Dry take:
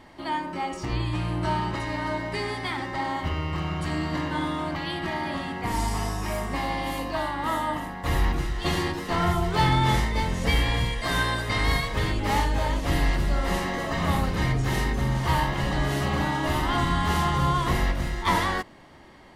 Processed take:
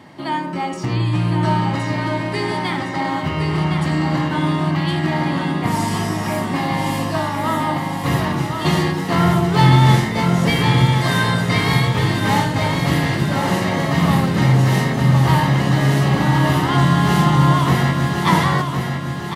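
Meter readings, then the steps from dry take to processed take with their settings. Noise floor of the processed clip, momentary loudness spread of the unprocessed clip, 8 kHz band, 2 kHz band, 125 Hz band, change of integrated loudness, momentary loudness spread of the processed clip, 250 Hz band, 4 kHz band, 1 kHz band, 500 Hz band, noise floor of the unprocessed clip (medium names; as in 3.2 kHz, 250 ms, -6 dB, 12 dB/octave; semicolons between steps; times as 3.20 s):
-25 dBFS, 6 LU, +6.5 dB, +6.5 dB, +11.5 dB, +9.0 dB, 7 LU, +11.5 dB, +6.5 dB, +7.0 dB, +7.5 dB, -37 dBFS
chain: high-pass 110 Hz 24 dB/octave; peaking EQ 140 Hz +8.5 dB 1.4 oct; feedback delay 1063 ms, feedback 48%, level -6 dB; trim +5.5 dB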